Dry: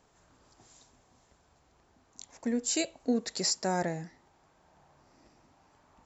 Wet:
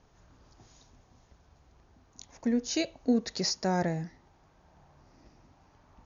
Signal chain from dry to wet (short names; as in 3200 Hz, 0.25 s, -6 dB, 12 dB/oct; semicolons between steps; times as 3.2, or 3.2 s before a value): brick-wall FIR low-pass 6900 Hz; low shelf 150 Hz +11.5 dB